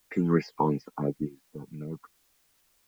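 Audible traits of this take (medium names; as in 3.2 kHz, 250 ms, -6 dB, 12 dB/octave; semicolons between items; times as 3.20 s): phasing stages 8, 2.9 Hz, lowest notch 540–1100 Hz; a quantiser's noise floor 12-bit, dither triangular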